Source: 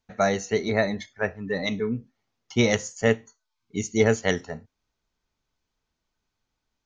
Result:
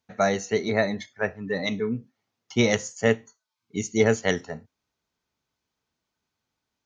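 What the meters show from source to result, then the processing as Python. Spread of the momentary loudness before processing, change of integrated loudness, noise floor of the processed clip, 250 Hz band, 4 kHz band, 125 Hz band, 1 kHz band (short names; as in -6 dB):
10 LU, 0.0 dB, -84 dBFS, 0.0 dB, 0.0 dB, -1.5 dB, 0.0 dB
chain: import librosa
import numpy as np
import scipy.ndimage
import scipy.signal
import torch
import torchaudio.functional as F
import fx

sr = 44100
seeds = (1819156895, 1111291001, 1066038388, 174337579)

y = scipy.signal.sosfilt(scipy.signal.butter(2, 89.0, 'highpass', fs=sr, output='sos'), x)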